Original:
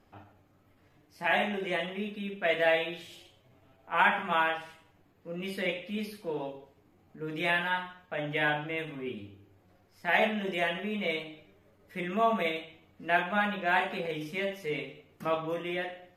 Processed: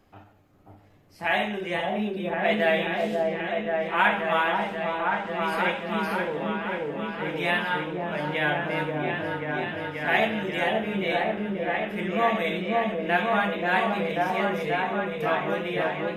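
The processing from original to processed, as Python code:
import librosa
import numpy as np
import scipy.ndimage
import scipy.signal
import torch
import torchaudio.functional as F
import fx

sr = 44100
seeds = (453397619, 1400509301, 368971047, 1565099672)

y = fx.echo_opening(x, sr, ms=534, hz=750, octaves=1, feedback_pct=70, wet_db=0)
y = fx.wow_flutter(y, sr, seeds[0], rate_hz=2.1, depth_cents=29.0)
y = y * 10.0 ** (2.5 / 20.0)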